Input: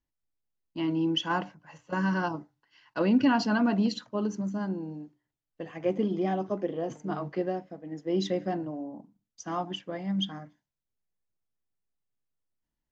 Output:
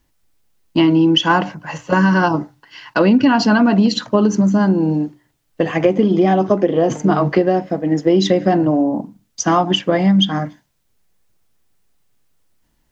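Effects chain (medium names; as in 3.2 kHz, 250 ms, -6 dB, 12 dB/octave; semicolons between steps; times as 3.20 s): compression 6:1, threshold -33 dBFS, peak gain reduction 14 dB; loudness maximiser +23.5 dB; trim -1 dB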